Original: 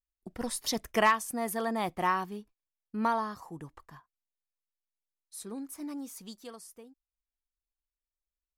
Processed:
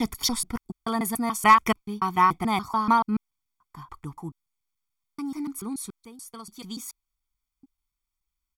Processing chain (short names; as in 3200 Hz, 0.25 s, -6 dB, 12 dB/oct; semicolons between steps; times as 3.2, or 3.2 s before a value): slices in reverse order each 0.144 s, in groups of 6; comb 0.9 ms, depth 94%; gain +4.5 dB